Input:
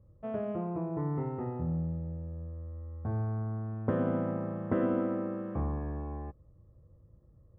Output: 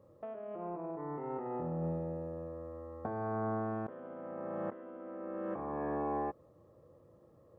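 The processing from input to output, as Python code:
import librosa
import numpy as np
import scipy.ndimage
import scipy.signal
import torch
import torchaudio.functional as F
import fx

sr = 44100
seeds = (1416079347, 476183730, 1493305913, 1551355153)

y = scipy.signal.sosfilt(scipy.signal.butter(2, 490.0, 'highpass', fs=sr, output='sos'), x)
y = fx.tilt_eq(y, sr, slope=-2.0)
y = fx.over_compress(y, sr, threshold_db=-46.0, ratio=-1.0)
y = y * librosa.db_to_amplitude(6.0)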